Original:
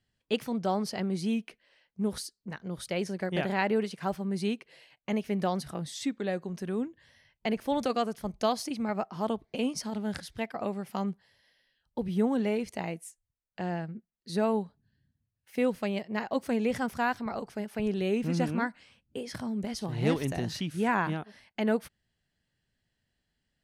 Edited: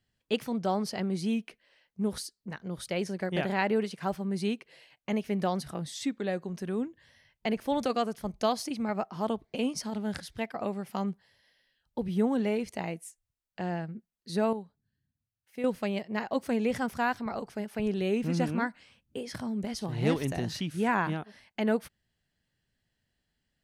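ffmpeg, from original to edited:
-filter_complex "[0:a]asplit=3[a][b][c];[a]atrim=end=14.532[d];[b]atrim=start=14.528:end=15.642,asetpts=PTS-STARTPTS,volume=-8.5dB[e];[c]atrim=start=15.638[f];[d][e]acrossfade=d=0.004:c1=hsin:c2=hsin[g];[g][f]acrossfade=d=0.004:c1=hsin:c2=hsin"

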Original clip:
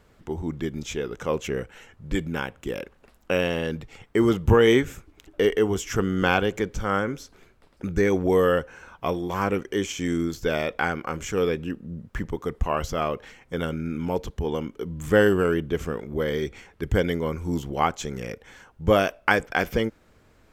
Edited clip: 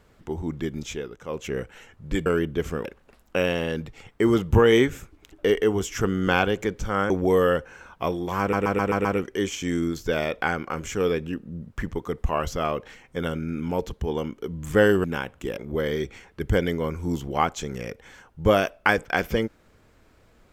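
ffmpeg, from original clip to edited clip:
-filter_complex "[0:a]asplit=12[a][b][c][d][e][f][g][h][i][j][k][l];[a]atrim=end=1.21,asetpts=PTS-STARTPTS,afade=t=out:st=0.83:d=0.38:silence=0.281838[m];[b]atrim=start=1.21:end=2.262,asetpts=PTS-STARTPTS,afade=t=in:d=0.38:silence=0.281838[n];[c]atrim=start=15.408:end=16.002[o];[d]atrim=start=2.798:end=7.052[p];[e]atrim=start=8.118:end=9.552[q];[f]atrim=start=9.418:end=9.552[r];[g]atrim=start=9.418:end=9.552[s];[h]atrim=start=9.418:end=9.552[t];[i]atrim=start=9.418:end=9.552[u];[j]atrim=start=9.418:end=15.412[v];[k]atrim=start=2.258:end=2.802[w];[l]atrim=start=15.998[x];[m][n]concat=n=2:v=0:a=1[y];[y][o]acrossfade=d=0.004:c1=hsin:c2=hsin[z];[z][p]acrossfade=d=0.004:c1=hsin:c2=hsin[aa];[aa][q]acrossfade=d=0.004:c1=hsin:c2=hsin[ab];[ab][r]acrossfade=d=0.004:c1=hsin:c2=hsin[ac];[ac][s]acrossfade=d=0.004:c1=hsin:c2=hsin[ad];[ad][t]acrossfade=d=0.004:c1=hsin:c2=hsin[ae];[ae][u]acrossfade=d=0.004:c1=hsin:c2=hsin[af];[af][v]acrossfade=d=0.004:c1=hsin:c2=hsin[ag];[ag][w]acrossfade=d=0.004:c1=hsin:c2=hsin[ah];[ah][x]acrossfade=d=0.004:c1=hsin:c2=hsin"

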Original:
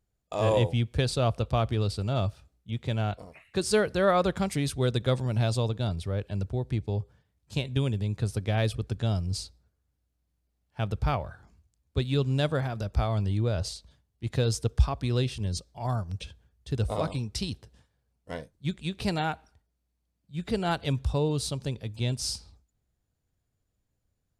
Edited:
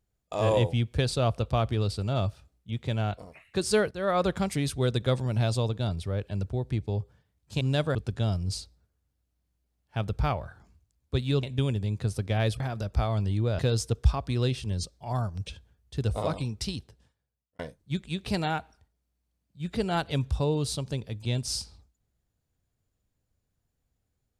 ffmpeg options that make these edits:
-filter_complex "[0:a]asplit=8[a][b][c][d][e][f][g][h];[a]atrim=end=3.91,asetpts=PTS-STARTPTS,afade=t=out:st=3.906:d=0.004:c=hsin:silence=0.188365[i];[b]atrim=start=3.91:end=7.612,asetpts=PTS-STARTPTS,afade=t=in:d=0.33:silence=0.188365[j];[c]atrim=start=12.258:end=12.602[k];[d]atrim=start=8.778:end=12.262[l];[e]atrim=start=7.608:end=8.782[m];[f]atrim=start=12.598:end=13.592[n];[g]atrim=start=14.328:end=18.33,asetpts=PTS-STARTPTS,afade=t=out:st=2.992:d=1.01[o];[h]atrim=start=18.33,asetpts=PTS-STARTPTS,afade=t=in:d=0.004:c=hsin[p];[i][j]concat=n=2:v=0:a=1[q];[q][k]acrossfade=d=0.004:c1=hsin:c2=hsin[r];[r][l]acrossfade=d=0.004:c1=hsin:c2=hsin[s];[s][m]acrossfade=d=0.004:c1=hsin:c2=hsin[t];[t][n]acrossfade=d=0.004:c1=hsin:c2=hsin[u];[o][p]concat=n=2:v=0:a=1[v];[u][v]acrossfade=d=0.004:c1=hsin:c2=hsin"

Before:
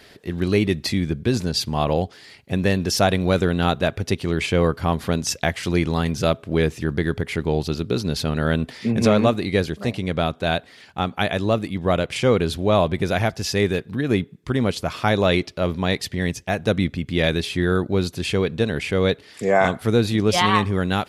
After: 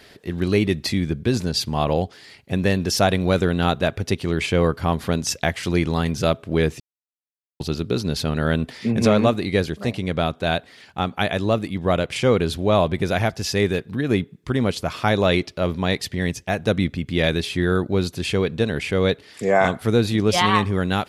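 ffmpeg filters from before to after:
-filter_complex "[0:a]asplit=3[a][b][c];[a]atrim=end=6.8,asetpts=PTS-STARTPTS,afade=t=out:st=6.796:d=0.004:c=hsin[d];[b]atrim=start=6.8:end=7.6,asetpts=PTS-STARTPTS,volume=0[e];[c]atrim=start=7.6,asetpts=PTS-STARTPTS,afade=t=in:d=0.004:c=hsin[f];[d][e][f]concat=n=3:v=0:a=1"

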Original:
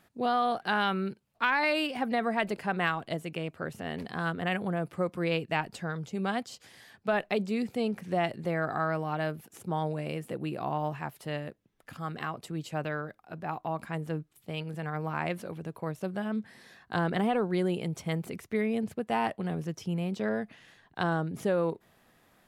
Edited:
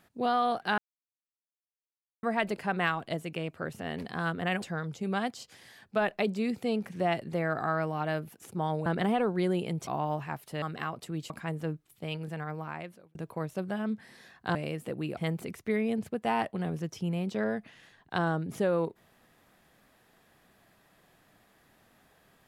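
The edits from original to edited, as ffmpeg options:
-filter_complex "[0:a]asplit=11[a][b][c][d][e][f][g][h][i][j][k];[a]atrim=end=0.78,asetpts=PTS-STARTPTS,afade=t=out:st=0.776:d=0.004:c=hsin[l];[b]atrim=start=0.78:end=2.23,asetpts=PTS-STARTPTS,volume=0[m];[c]atrim=start=2.23:end=4.622,asetpts=PTS-STARTPTS,afade=t=in:d=0.004:c=hsin[n];[d]atrim=start=5.738:end=9.982[o];[e]atrim=start=17.008:end=18.022[p];[f]atrim=start=10.598:end=11.352[q];[g]atrim=start=12.028:end=12.712[r];[h]atrim=start=13.758:end=15.61,asetpts=PTS-STARTPTS,afade=t=out:st=0.932:d=0.92[s];[i]atrim=start=15.61:end=17.012,asetpts=PTS-STARTPTS,afade=t=in:d=0.004:c=hsin[t];[j]atrim=start=9.978:end=10.602[u];[k]atrim=start=18.018[v];[l][m][n]concat=n=3:v=0:a=1[w];[w][o]acrossfade=d=0.004:c1=hsin:c2=hsin[x];[x][p]acrossfade=d=0.004:c1=hsin:c2=hsin[y];[y][q]acrossfade=d=0.004:c1=hsin:c2=hsin[z];[z][r]acrossfade=d=0.004:c1=hsin:c2=hsin[aa];[s][t]concat=n=2:v=0:a=1[ab];[aa][ab]acrossfade=d=0.004:c1=hsin:c2=hsin[ac];[ac][u]acrossfade=d=0.004:c1=hsin:c2=hsin[ad];[ad][v]acrossfade=d=0.004:c1=hsin:c2=hsin"

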